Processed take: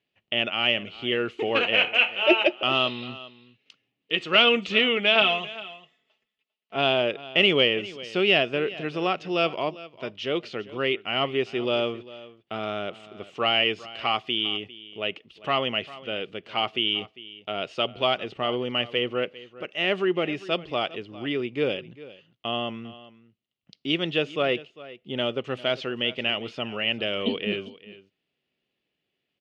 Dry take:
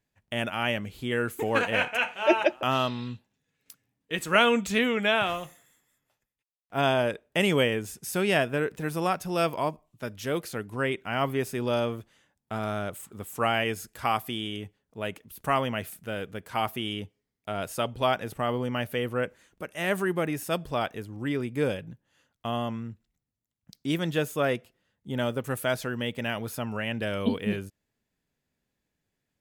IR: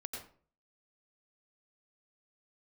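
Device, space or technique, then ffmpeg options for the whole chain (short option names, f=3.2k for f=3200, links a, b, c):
overdrive pedal into a guitar cabinet: -filter_complex "[0:a]asplit=2[a][b];[b]highpass=f=720:p=1,volume=9dB,asoftclip=type=tanh:threshold=-7dB[c];[a][c]amix=inputs=2:normalize=0,lowpass=f=4.7k:p=1,volume=-6dB,highpass=76,equalizer=f=90:t=q:w=4:g=-7,equalizer=f=370:t=q:w=4:g=6,equalizer=f=940:t=q:w=4:g=-8,equalizer=f=1.6k:t=q:w=4:g=-9,equalizer=f=2.9k:t=q:w=4:g=10,lowpass=f=4.6k:w=0.5412,lowpass=f=4.6k:w=1.3066,asettb=1/sr,asplit=3[d][e][f];[d]atrim=end=5.154[g];[e]atrim=start=5.15:end=6.76,asetpts=PTS-STARTPTS,afade=t=in:d=0.004:c=qsin,afade=t=out:st=1.606:d=0.004:c=qsin,aecho=1:1:4.6:0.91,atrim=end_sample=71001[h];[f]atrim=start=6.756[i];[g][h]acrossfade=d=0.004:c1=hsin:c2=qsin[j];[j][i]acrossfade=d=0.004:c1=qsin:c2=hsin,aecho=1:1:400:0.126"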